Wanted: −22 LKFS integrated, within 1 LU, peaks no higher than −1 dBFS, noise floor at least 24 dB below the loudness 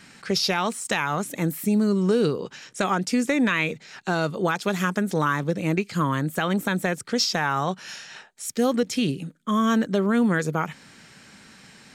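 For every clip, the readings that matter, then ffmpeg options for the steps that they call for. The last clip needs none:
integrated loudness −24.5 LKFS; sample peak −11.0 dBFS; target loudness −22.0 LKFS
→ -af "volume=2.5dB"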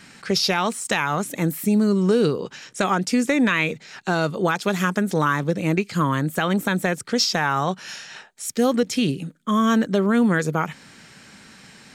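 integrated loudness −22.0 LKFS; sample peak −8.5 dBFS; background noise floor −48 dBFS

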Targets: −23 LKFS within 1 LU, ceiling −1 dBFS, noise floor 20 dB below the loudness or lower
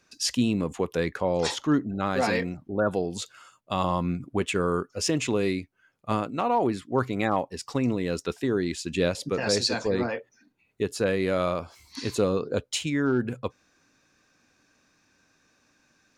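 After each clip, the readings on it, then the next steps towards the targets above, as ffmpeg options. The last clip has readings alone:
integrated loudness −27.5 LKFS; sample peak −9.5 dBFS; target loudness −23.0 LKFS
→ -af "volume=4.5dB"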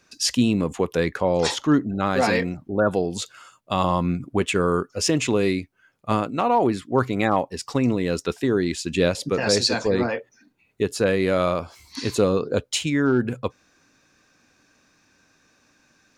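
integrated loudness −23.0 LKFS; sample peak −5.0 dBFS; background noise floor −63 dBFS

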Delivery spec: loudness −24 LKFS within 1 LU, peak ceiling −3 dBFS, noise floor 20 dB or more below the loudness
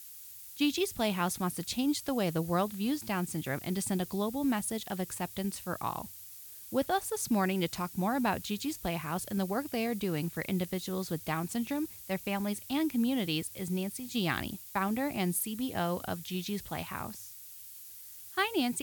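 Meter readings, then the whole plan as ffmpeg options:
background noise floor −49 dBFS; target noise floor −53 dBFS; integrated loudness −33.0 LKFS; sample peak −15.5 dBFS; target loudness −24.0 LKFS
→ -af "afftdn=noise_reduction=6:noise_floor=-49"
-af "volume=9dB"

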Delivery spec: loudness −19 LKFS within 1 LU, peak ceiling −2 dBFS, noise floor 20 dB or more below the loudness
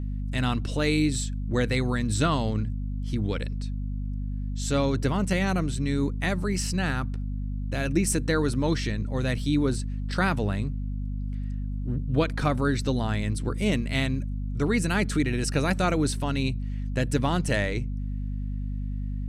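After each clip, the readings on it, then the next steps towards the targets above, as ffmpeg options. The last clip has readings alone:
mains hum 50 Hz; hum harmonics up to 250 Hz; level of the hum −28 dBFS; integrated loudness −27.5 LKFS; sample peak −10.5 dBFS; target loudness −19.0 LKFS
→ -af "bandreject=frequency=50:width_type=h:width=4,bandreject=frequency=100:width_type=h:width=4,bandreject=frequency=150:width_type=h:width=4,bandreject=frequency=200:width_type=h:width=4,bandreject=frequency=250:width_type=h:width=4"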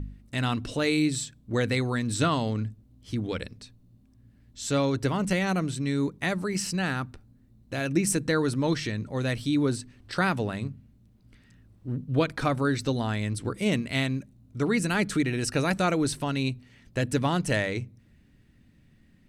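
mains hum none found; integrated loudness −28.0 LKFS; sample peak −11.5 dBFS; target loudness −19.0 LKFS
→ -af "volume=9dB"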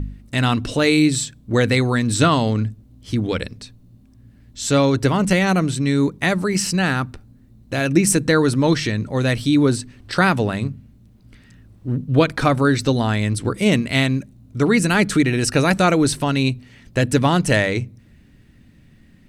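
integrated loudness −19.0 LKFS; sample peak −2.5 dBFS; background noise floor −50 dBFS

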